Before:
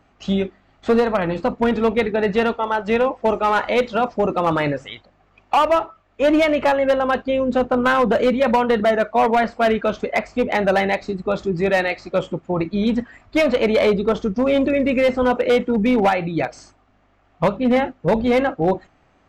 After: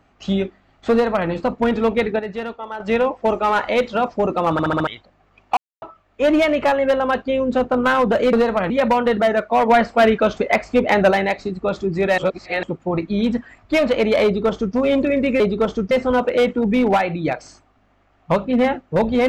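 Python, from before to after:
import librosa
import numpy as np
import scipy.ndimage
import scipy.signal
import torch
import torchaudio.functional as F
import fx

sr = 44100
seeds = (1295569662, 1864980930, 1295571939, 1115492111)

y = fx.edit(x, sr, fx.duplicate(start_s=0.91, length_s=0.37, to_s=8.33),
    fx.clip_gain(start_s=2.19, length_s=0.61, db=-9.0),
    fx.stutter_over(start_s=4.52, slice_s=0.07, count=5),
    fx.silence(start_s=5.57, length_s=0.25),
    fx.clip_gain(start_s=9.31, length_s=1.43, db=3.5),
    fx.reverse_span(start_s=11.81, length_s=0.45),
    fx.duplicate(start_s=13.87, length_s=0.51, to_s=15.03), tone=tone)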